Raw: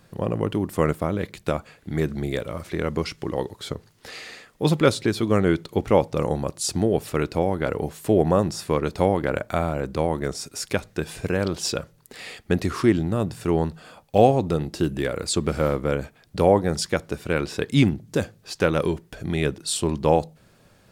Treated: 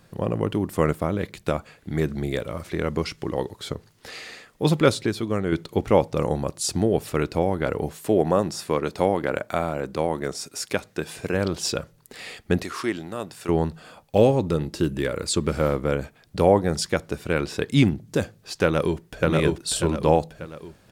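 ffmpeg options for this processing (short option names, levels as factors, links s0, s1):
-filter_complex "[0:a]asettb=1/sr,asplit=3[s0][s1][s2];[s0]atrim=end=7.974[s3];[s1]atrim=start=7.97:end=11.34,asetpts=PTS-STARTPTS,afade=t=in:d=0.004:c=qsin,afade=t=out:st=3.366:d=0.004:c=qsin,highpass=f=190:p=1[s4];[s2]atrim=start=11.336[s5];[s3][s4]acrossfade=d=0.004:c1=hsin:c2=qsin[s6];[s6][s5]acrossfade=d=0.004:c1=qsin:c2=hsin,asettb=1/sr,asplit=3[s7][s8][s9];[s7]atrim=end=12.634[s10];[s8]atrim=start=12.63:end=13.49,asetpts=PTS-STARTPTS,afade=t=in:d=0.004:c=qsin,afade=t=out:st=0.856:d=0.004:c=qsin,highpass=f=780:p=1[s11];[s9]atrim=start=13.486[s12];[s10][s11]acrossfade=d=0.004:c1=hsin:c2=qsin[s13];[s13][s12]acrossfade=d=0.004:c1=qsin:c2=hsin,asettb=1/sr,asplit=3[s14][s15][s16];[s14]atrim=end=14.174[s17];[s15]atrim=start=14.17:end=15.53,asetpts=PTS-STARTPTS,afade=t=in:d=0.004:c=qsin,afade=t=out:st=1.356:d=0.004:c=qsin,asuperstop=centerf=720:order=4:qfactor=5.6[s18];[s16]atrim=start=15.526[s19];[s17][s18]acrossfade=d=0.004:c1=hsin:c2=qsin[s20];[s20][s19]acrossfade=d=0.004:c1=qsin:c2=hsin,asplit=2[s21][s22];[s22]afade=t=in:st=18.63:d=0.01,afade=t=out:st=19.27:d=0.01,aecho=0:1:590|1180|1770|2360|2950:0.891251|0.3565|0.1426|0.0570401|0.022816[s23];[s21][s23]amix=inputs=2:normalize=0,asplit=2[s24][s25];[s24]atrim=end=5.52,asetpts=PTS-STARTPTS,afade=t=out:st=4.94:d=0.58:c=qua:silence=0.501187[s26];[s25]atrim=start=5.52,asetpts=PTS-STARTPTS,afade=t=in:d=0.004:c=hsin:silence=0.501187[s27];[s26][s27]concat=n=2:v=0:a=1"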